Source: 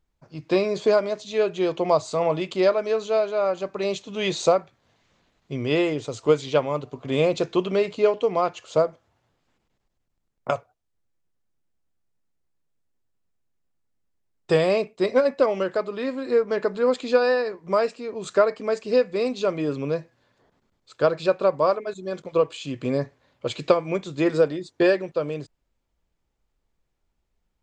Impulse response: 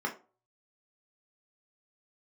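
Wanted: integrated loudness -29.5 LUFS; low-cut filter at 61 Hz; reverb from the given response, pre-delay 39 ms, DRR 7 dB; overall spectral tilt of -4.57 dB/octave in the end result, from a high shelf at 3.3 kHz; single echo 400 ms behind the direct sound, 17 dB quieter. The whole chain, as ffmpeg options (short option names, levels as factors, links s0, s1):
-filter_complex "[0:a]highpass=61,highshelf=f=3300:g=8.5,aecho=1:1:400:0.141,asplit=2[s0][s1];[1:a]atrim=start_sample=2205,adelay=39[s2];[s1][s2]afir=irnorm=-1:irlink=0,volume=0.211[s3];[s0][s3]amix=inputs=2:normalize=0,volume=0.447"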